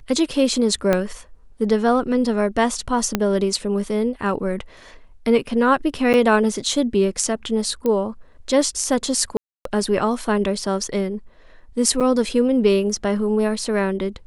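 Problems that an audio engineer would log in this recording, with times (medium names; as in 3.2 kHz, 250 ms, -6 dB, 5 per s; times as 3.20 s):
0.93 s: pop -6 dBFS
3.15 s: pop -4 dBFS
6.13–6.14 s: dropout 8.9 ms
7.86 s: pop -11 dBFS
9.37–9.65 s: dropout 283 ms
12.00–12.01 s: dropout 7 ms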